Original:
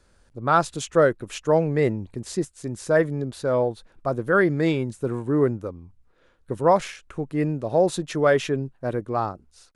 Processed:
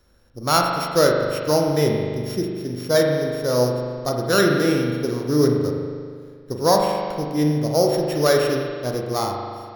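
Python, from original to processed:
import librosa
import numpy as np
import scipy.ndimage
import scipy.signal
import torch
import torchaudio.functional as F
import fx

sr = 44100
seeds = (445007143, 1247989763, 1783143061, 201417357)

y = np.r_[np.sort(x[:len(x) // 8 * 8].reshape(-1, 8), axis=1).ravel(), x[len(x) // 8 * 8:]]
y = fx.rev_spring(y, sr, rt60_s=2.0, pass_ms=(40,), chirp_ms=20, drr_db=0.5)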